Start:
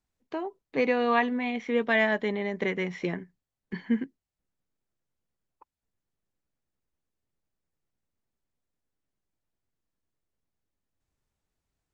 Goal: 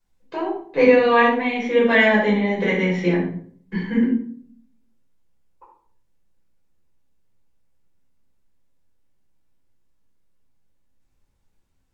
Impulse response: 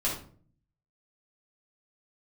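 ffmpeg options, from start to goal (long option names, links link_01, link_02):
-filter_complex "[1:a]atrim=start_sample=2205,asetrate=36162,aresample=44100[link_01];[0:a][link_01]afir=irnorm=-1:irlink=0"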